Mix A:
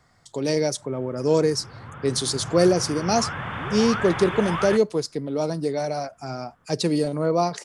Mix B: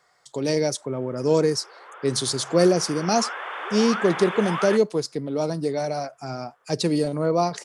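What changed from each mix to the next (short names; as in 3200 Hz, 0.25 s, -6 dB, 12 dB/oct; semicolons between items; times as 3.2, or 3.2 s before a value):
background: add steep high-pass 380 Hz 48 dB/oct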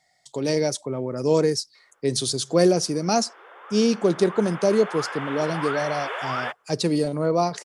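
background: entry +1.75 s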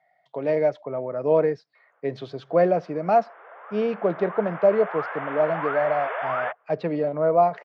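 master: add speaker cabinet 190–2300 Hz, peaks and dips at 240 Hz -9 dB, 360 Hz -7 dB, 650 Hz +8 dB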